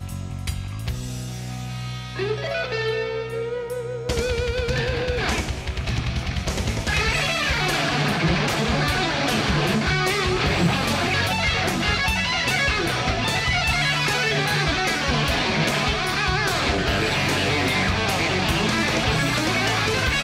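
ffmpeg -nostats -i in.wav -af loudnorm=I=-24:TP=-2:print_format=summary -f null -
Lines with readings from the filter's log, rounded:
Input Integrated:    -21.7 LUFS
Input True Peak:      -7.7 dBTP
Input LRA:             5.0 LU
Input Threshold:     -31.7 LUFS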